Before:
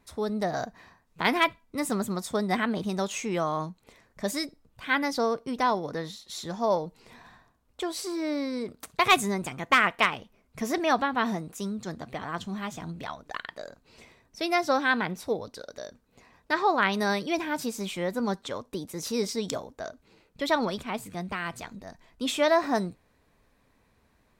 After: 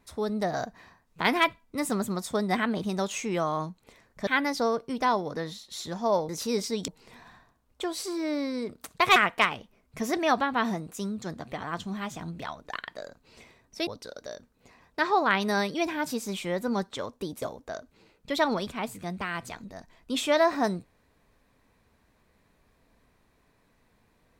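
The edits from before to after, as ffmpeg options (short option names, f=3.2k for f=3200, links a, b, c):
-filter_complex "[0:a]asplit=7[a][b][c][d][e][f][g];[a]atrim=end=4.272[h];[b]atrim=start=4.848:end=6.872[i];[c]atrim=start=18.938:end=19.532[j];[d]atrim=start=6.868:end=9.152[k];[e]atrim=start=9.768:end=14.482[l];[f]atrim=start=15.388:end=18.942[m];[g]atrim=start=19.528[n];[h][i]acrossfade=d=0.004:c1=hsin:c2=hsin[o];[o][j]acrossfade=d=0.004:c1=hsin:c2=hsin[p];[p][k]acrossfade=d=0.004:c1=hsin:c2=hsin[q];[q][l]acrossfade=d=0.004:c1=hsin:c2=hsin[r];[r][m]acrossfade=d=0.004:c1=hsin:c2=hsin[s];[s][n]acrossfade=d=0.004:c1=hsin:c2=hsin"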